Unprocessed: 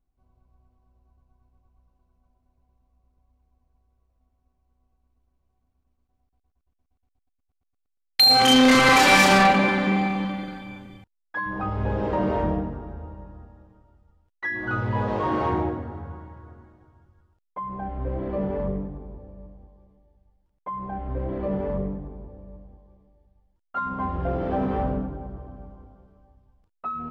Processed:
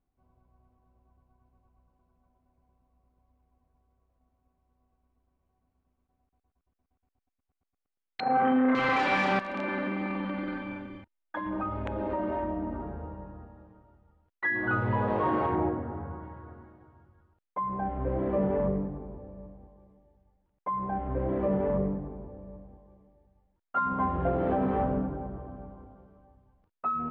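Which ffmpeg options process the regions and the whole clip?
-filter_complex "[0:a]asettb=1/sr,asplit=3[a][b][c];[a]atrim=end=8.204[d];[b]atrim=start=8.2:end=8.75,asetpts=PTS-STARTPTS,afade=t=in:d=0.004:c=qsin,afade=t=out:st=0.546:d=0.004:c=qsin,lowpass=f=1.7k:w=0.5412,lowpass=f=1.7k:w=1.3066,lowshelf=f=120:t=q:w=1.5:g=-12.5,acontrast=83[e];[c]atrim=start=8.746[f];[d][e]acrossfade=d=0.004:c1=hsin:c2=qsin[g];[g][f]acrossfade=d=0.004:c1=qsin:c2=hsin,asettb=1/sr,asplit=3[h][i][j];[h]atrim=end=9.394[k];[i]atrim=start=9.39:end=12.83,asetpts=PTS-STARTPTS,afade=t=in:d=0.004:c=qsin,afade=t=out:st=3.436:d=0.004:c=qsin,aecho=1:1:3.3:0.83,atrim=end_sample=151704,acompressor=threshold=-29dB:ratio=6:attack=3.2:release=140:knee=1:detection=peak,aeval=exprs='(mod(13.3*val(0)+1,2)-1)/13.3':c=same[l];[j]atrim=start=12.826[m];[k][l]acrossfade=d=0.004:c1=hsin:c2=qsin[n];[n][m]acrossfade=d=0.004:c1=qsin:c2=hsin,asettb=1/sr,asplit=3[o][p][q];[o]atrim=end=15.554[r];[p]atrim=start=15.55:end=16.23,asetpts=PTS-STARTPTS,afade=t=in:d=0.004:c=qsin,afade=t=out:st=0.676:d=0.004:c=qsin,highpass=45,highshelf=f=3.1k:g=-9.5[s];[q]atrim=start=16.226[t];[r][s]acrossfade=d=0.004:c1=hsin:c2=qsin[u];[u][t]acrossfade=d=0.004:c1=qsin:c2=hsin,lowshelf=f=61:g=-12,alimiter=limit=-19.5dB:level=0:latency=1:release=287,lowpass=2.4k,volume=1.5dB"

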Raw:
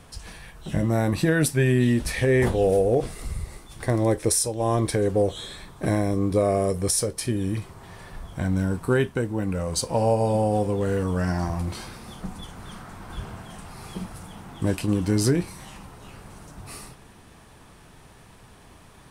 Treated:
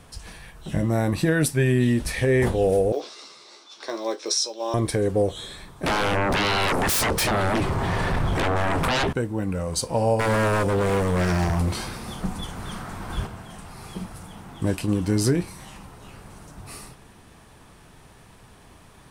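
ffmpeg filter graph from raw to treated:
-filter_complex "[0:a]asettb=1/sr,asplit=3[a][b][c];[a]atrim=end=2.924[d];[b]atrim=start=2.92:end=4.74,asetpts=PTS-STARTPTS,afade=t=in:d=0.004:c=qsin,afade=t=out:st=1.816:d=0.004:c=qsin,highpass=f=380:w=0.5412,highpass=f=380:w=1.3066,equalizer=f=470:t=q:w=4:g=-8,equalizer=f=730:t=q:w=4:g=-7,equalizer=f=1.9k:t=q:w=4:g=-8,equalizer=f=3.9k:t=q:w=4:g=8,equalizer=f=5.5k:t=q:w=4:g=8,lowpass=f=6.3k:w=0.5412,lowpass=f=6.3k:w=1.3066,acrusher=bits=9:mode=log:mix=0:aa=0.000001,asplit=2[e][f];[f]adelay=14,volume=-6dB[g];[e][g]amix=inputs=2:normalize=0,atrim=end_sample=80262[h];[c]atrim=start=4.736[i];[d][h]acrossfade=d=0.004:c1=hsin:c2=qsin[j];[j][i]acrossfade=d=0.004:c1=qsin:c2=hsin,asettb=1/sr,asplit=3[k][l][m];[k]atrim=end=5.864[n];[l]atrim=start=5.86:end=9.13,asetpts=PTS-STARTPTS,afade=t=in:d=0.004:c=qsin,afade=t=out:st=3.266:d=0.004:c=qsin,lowpass=f=2.4k:p=1,acompressor=threshold=-27dB:ratio=5:attack=3.2:release=140:knee=1:detection=peak,aeval=exprs='0.112*sin(PI/2*7.94*val(0)/0.112)':c=same[o];[m]atrim=start=9.126[p];[n][o]acrossfade=d=0.004:c1=hsin:c2=qsin[q];[q][p]acrossfade=d=0.004:c1=qsin:c2=hsin,asettb=1/sr,asplit=3[r][s][t];[r]atrim=end=10.194[u];[s]atrim=start=10.19:end=13.27,asetpts=PTS-STARTPTS,afade=t=in:d=0.004:c=qsin,afade=t=out:st=3.076:d=0.004:c=qsin,aeval=exprs='0.075*(abs(mod(val(0)/0.075+3,4)-2)-1)':c=same,acontrast=53[v];[t]atrim=start=13.266[w];[u][v]acrossfade=d=0.004:c1=hsin:c2=qsin[x];[x][w]acrossfade=d=0.004:c1=qsin:c2=hsin"

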